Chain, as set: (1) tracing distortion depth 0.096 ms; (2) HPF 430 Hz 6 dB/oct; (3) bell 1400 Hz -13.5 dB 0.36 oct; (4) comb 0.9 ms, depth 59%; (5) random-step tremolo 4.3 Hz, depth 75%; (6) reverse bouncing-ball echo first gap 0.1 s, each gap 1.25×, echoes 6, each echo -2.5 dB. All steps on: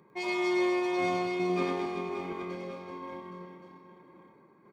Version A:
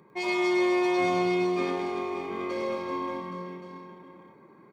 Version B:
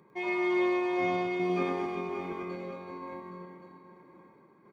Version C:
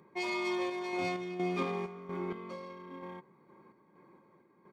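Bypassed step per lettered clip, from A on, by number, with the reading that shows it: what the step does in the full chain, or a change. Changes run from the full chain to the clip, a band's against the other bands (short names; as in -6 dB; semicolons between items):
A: 5, 125 Hz band -2.0 dB; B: 1, 4 kHz band -4.5 dB; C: 6, momentary loudness spread change -3 LU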